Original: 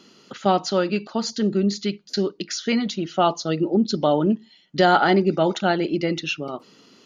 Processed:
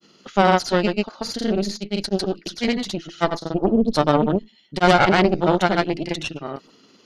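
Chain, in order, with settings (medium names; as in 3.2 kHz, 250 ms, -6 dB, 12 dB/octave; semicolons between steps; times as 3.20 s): Chebyshev shaper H 4 -9 dB, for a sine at -4.5 dBFS; granulator, pitch spread up and down by 0 st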